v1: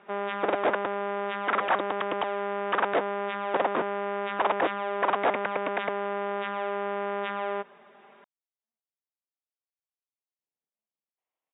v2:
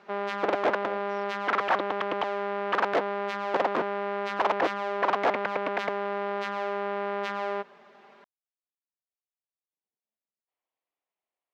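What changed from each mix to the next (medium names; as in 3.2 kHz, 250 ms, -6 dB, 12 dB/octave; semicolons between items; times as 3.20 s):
speech: entry -0.70 s; master: remove brick-wall FIR low-pass 3.8 kHz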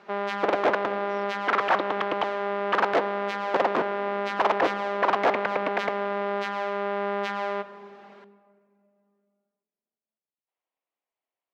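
reverb: on, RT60 2.6 s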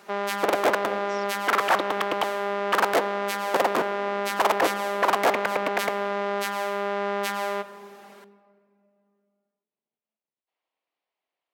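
speech +4.0 dB; master: remove distance through air 210 m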